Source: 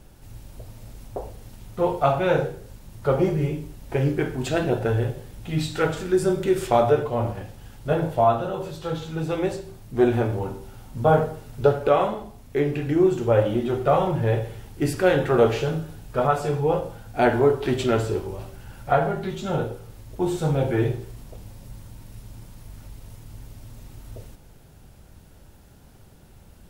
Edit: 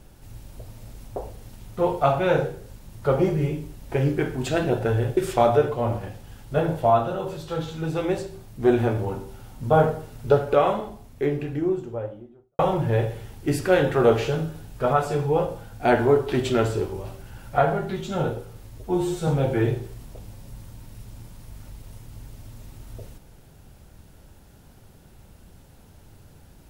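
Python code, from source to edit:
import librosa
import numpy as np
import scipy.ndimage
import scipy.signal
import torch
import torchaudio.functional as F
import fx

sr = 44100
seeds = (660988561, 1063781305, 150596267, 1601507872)

y = fx.studio_fade_out(x, sr, start_s=12.19, length_s=1.74)
y = fx.edit(y, sr, fx.cut(start_s=5.17, length_s=1.34),
    fx.stretch_span(start_s=20.12, length_s=0.33, factor=1.5), tone=tone)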